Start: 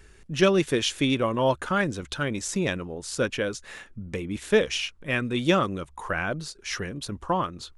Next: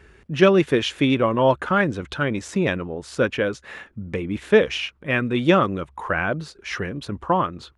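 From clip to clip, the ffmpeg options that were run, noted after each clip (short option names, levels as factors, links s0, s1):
-af "highpass=51,bass=f=250:g=-1,treble=f=4000:g=-14,volume=1.88"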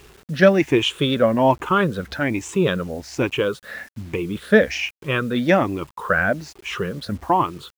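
-af "afftfilt=real='re*pow(10,12/40*sin(2*PI*(0.68*log(max(b,1)*sr/1024/100)/log(2)-(1.2)*(pts-256)/sr)))':imag='im*pow(10,12/40*sin(2*PI*(0.68*log(max(b,1)*sr/1024/100)/log(2)-(1.2)*(pts-256)/sr)))':win_size=1024:overlap=0.75,acrusher=bits=7:mix=0:aa=0.000001"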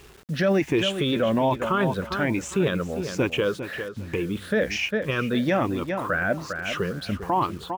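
-filter_complex "[0:a]asplit=2[s0][s1];[s1]adelay=401,lowpass=f=4600:p=1,volume=0.282,asplit=2[s2][s3];[s3]adelay=401,lowpass=f=4600:p=1,volume=0.24,asplit=2[s4][s5];[s5]adelay=401,lowpass=f=4600:p=1,volume=0.24[s6];[s0][s2][s4][s6]amix=inputs=4:normalize=0,alimiter=limit=0.237:level=0:latency=1:release=22,volume=0.841"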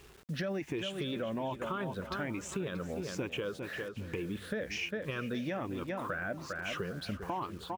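-af "acompressor=threshold=0.0501:ratio=6,aecho=1:1:631:0.133,volume=0.447"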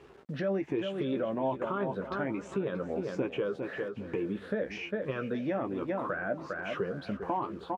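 -filter_complex "[0:a]bandpass=f=490:t=q:w=0.56:csg=0,asplit=2[s0][s1];[s1]adelay=15,volume=0.355[s2];[s0][s2]amix=inputs=2:normalize=0,volume=1.88"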